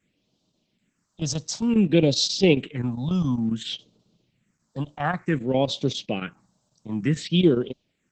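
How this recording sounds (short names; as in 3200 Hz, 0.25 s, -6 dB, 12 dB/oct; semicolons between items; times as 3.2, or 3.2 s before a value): chopped level 7.4 Hz, depth 60%, duty 85%; a quantiser's noise floor 12-bit, dither triangular; phasing stages 4, 0.56 Hz, lowest notch 340–1800 Hz; Opus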